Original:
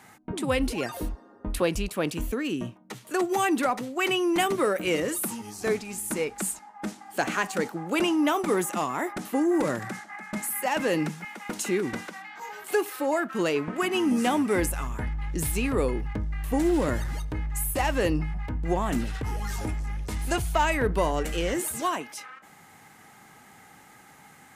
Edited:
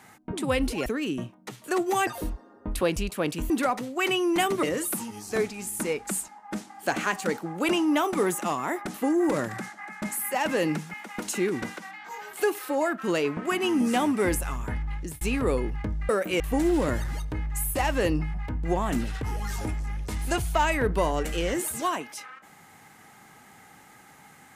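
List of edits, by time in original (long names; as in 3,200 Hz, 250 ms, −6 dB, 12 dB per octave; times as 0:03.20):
0:02.29–0:03.50: move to 0:00.86
0:04.63–0:04.94: move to 0:16.40
0:15.24–0:15.52: fade out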